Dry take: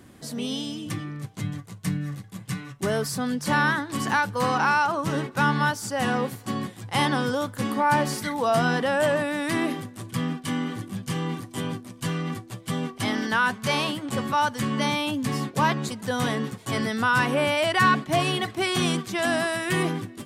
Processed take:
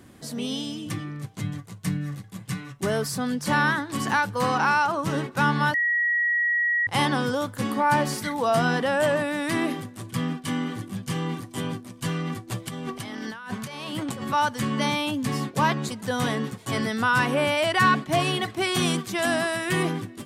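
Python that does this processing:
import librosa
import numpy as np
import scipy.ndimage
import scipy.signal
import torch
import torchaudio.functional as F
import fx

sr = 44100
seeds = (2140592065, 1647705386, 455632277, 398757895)

y = fx.over_compress(x, sr, threshold_db=-34.0, ratio=-1.0, at=(12.47, 14.26), fade=0.02)
y = fx.high_shelf(y, sr, hz=9500.0, db=6.0, at=(18.74, 19.34))
y = fx.edit(y, sr, fx.bleep(start_s=5.74, length_s=1.13, hz=1910.0, db=-20.0), tone=tone)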